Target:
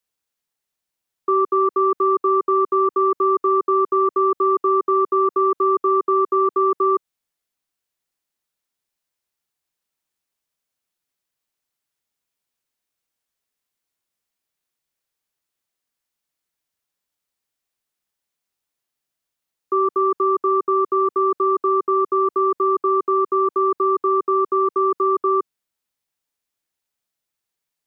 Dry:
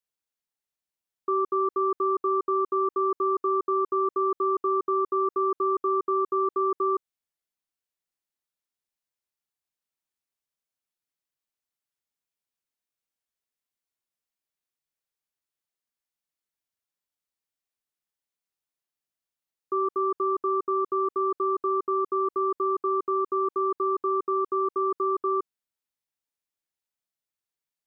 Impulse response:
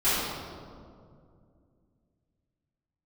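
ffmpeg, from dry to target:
-filter_complex "[0:a]acrossover=split=190[a][b];[a]alimiter=level_in=30dB:limit=-24dB:level=0:latency=1,volume=-30dB[c];[c][b]amix=inputs=2:normalize=0,acontrast=53,volume=1.5dB"

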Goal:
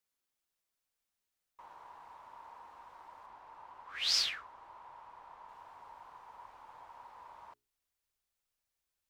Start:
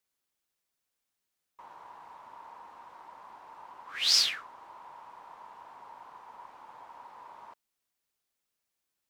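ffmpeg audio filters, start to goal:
-filter_complex "[0:a]asettb=1/sr,asplit=3[a][b][c];[a]atrim=end=3.264[d];[b]atrim=start=3.26:end=5.49,asetpts=PTS-STARTPTS,afade=t=in:d=0.004:c=qsin,afade=t=out:st=2.226:d=0.004:c=qsin,highshelf=f=6.2k:g=-8[e];[c]atrim=start=5.486[f];[d][e]acrossfade=d=0.004:c1=hsin:c2=qsin[g];[g][f]acrossfade=d=0.004:c1=qsin:c2=hsin,bandreject=f=60:t=h:w=6,bandreject=f=120:t=h:w=6,bandreject=f=180:t=h:w=6,bandreject=f=240:t=h:w=6,bandreject=f=300:t=h:w=6,bandreject=f=360:t=h:w=6,bandreject=f=420:t=h:w=6,asubboost=boost=4.5:cutoff=91,volume=-3.5dB"

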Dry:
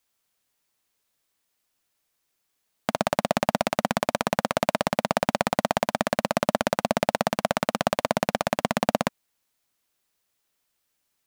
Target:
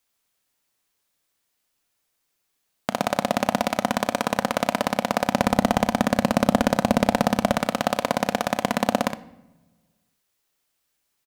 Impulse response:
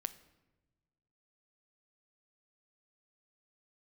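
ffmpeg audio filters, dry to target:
-filter_complex "[0:a]asettb=1/sr,asplit=3[a][b][c];[a]atrim=end=5.344[d];[b]atrim=start=5.34:end=7.55,asetpts=PTS-STARTPTS,afade=t=in:d=0.004:c=qsin,afade=t=out:st=2.206:d=0.004:c=qsin,lowshelf=f=240:g=11[e];[c]atrim=start=7.546[f];[d][e]acrossfade=d=0.004:c1=hsin:c2=qsin[g];[g][f]acrossfade=d=0.004:c1=qsin:c2=hsin,aecho=1:1:35|64:0.15|0.398,asplit=2[h][i];[1:a]atrim=start_sample=2205[j];[i][j]afir=irnorm=-1:irlink=0,volume=9dB[k];[h][k]amix=inputs=2:normalize=0,volume=-10dB"

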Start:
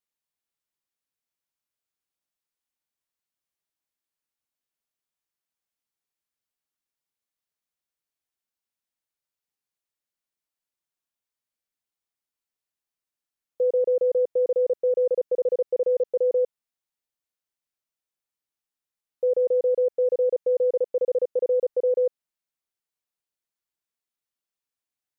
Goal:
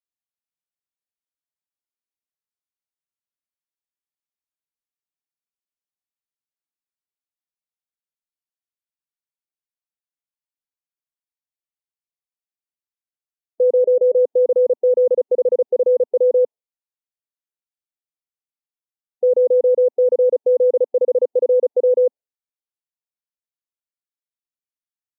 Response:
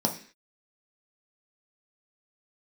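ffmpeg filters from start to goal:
-filter_complex "[0:a]asettb=1/sr,asplit=3[a][b][c];[a]atrim=end=13.724[d];[b]atrim=start=13.72:end=14.25,asetpts=PTS-STARTPTS,afade=t=in:d=0.004:c=qsin,afade=t=out:st=0.526:d=0.004:c=qsin,bandreject=f=203.3:t=h:w=4,bandreject=f=406.6:t=h:w=4,bandreject=f=609.9:t=h:w=4[e];[c]atrim=start=14.246[f];[d][e]acrossfade=d=0.004:c1=hsin:c2=qsin[g];[g][f]acrossfade=d=0.004:c1=qsin:c2=hsin,afftdn=nr=18:nf=-44,volume=7dB"

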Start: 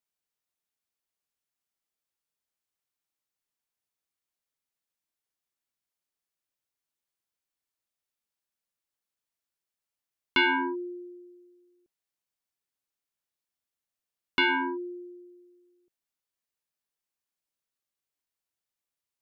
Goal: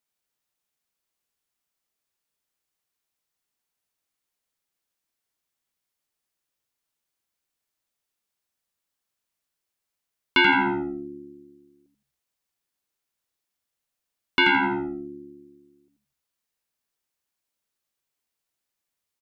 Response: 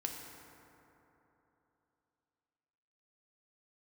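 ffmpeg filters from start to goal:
-filter_complex "[0:a]asplit=5[a][b][c][d][e];[b]adelay=83,afreqshift=-72,volume=-5.5dB[f];[c]adelay=166,afreqshift=-144,volume=-15.4dB[g];[d]adelay=249,afreqshift=-216,volume=-25.3dB[h];[e]adelay=332,afreqshift=-288,volume=-35.2dB[i];[a][f][g][h][i]amix=inputs=5:normalize=0,volume=4.5dB"

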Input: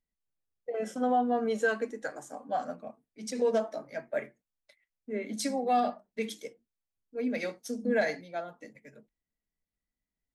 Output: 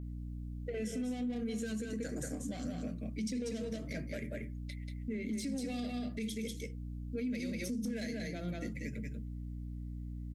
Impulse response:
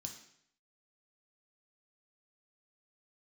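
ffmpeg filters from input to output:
-filter_complex "[0:a]aecho=1:1:186:0.447,asplit=2[a][b];[b]asoftclip=type=tanh:threshold=-32.5dB,volume=-4dB[c];[a][c]amix=inputs=2:normalize=0,adynamicequalizer=threshold=0.00282:dfrequency=5600:dqfactor=0.77:tfrequency=5600:tqfactor=0.77:attack=5:release=100:ratio=0.375:range=2:mode=cutabove:tftype=bell,acrossover=split=1300|4300[d][e][f];[d]acompressor=threshold=-34dB:ratio=4[g];[e]acompressor=threshold=-52dB:ratio=4[h];[f]acompressor=threshold=-48dB:ratio=4[i];[g][h][i]amix=inputs=3:normalize=0,firequalizer=gain_entry='entry(180,0);entry(830,-29);entry(2100,-5)':delay=0.05:min_phase=1,aeval=exprs='val(0)+0.002*(sin(2*PI*60*n/s)+sin(2*PI*2*60*n/s)/2+sin(2*PI*3*60*n/s)/3+sin(2*PI*4*60*n/s)/4+sin(2*PI*5*60*n/s)/5)':c=same,asoftclip=type=hard:threshold=-31.5dB,alimiter=level_in=19.5dB:limit=-24dB:level=0:latency=1:release=191,volume=-19.5dB,volume=13.5dB"

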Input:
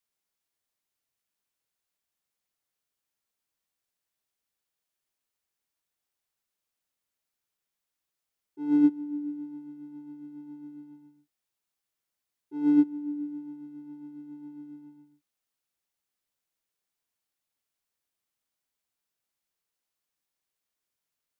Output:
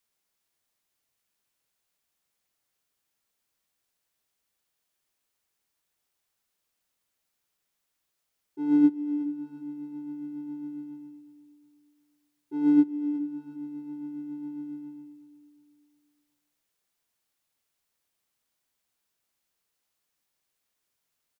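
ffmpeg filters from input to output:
-filter_complex "[0:a]asplit=2[a][b];[b]acompressor=threshold=-37dB:ratio=6,volume=-1dB[c];[a][c]amix=inputs=2:normalize=0,aecho=1:1:364|728|1092|1456:0.211|0.0845|0.0338|0.0135"

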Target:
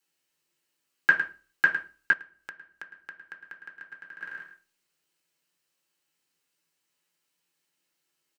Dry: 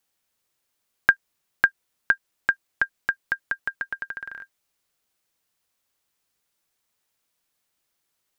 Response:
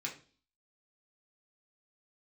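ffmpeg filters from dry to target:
-filter_complex "[0:a]aecho=1:1:107:0.282[a];[1:a]atrim=start_sample=2205,asetrate=52920,aresample=44100[b];[a][b]afir=irnorm=-1:irlink=0,asettb=1/sr,asplit=3[c][d][e];[c]atrim=end=2.134[f];[d]atrim=start=2.13:end=4.21,asetpts=PTS-STARTPTS,afade=t=in:d=0.004:c=qsin,afade=t=out:st=2.076:d=0.004:c=qsin,acompressor=threshold=-42dB:ratio=6[g];[e]atrim=start=4.206[h];[f][g]acrossfade=d=0.004:c1=hsin:c2=qsin[i];[i][h]acrossfade=d=0.004:c1=qsin:c2=hsin"

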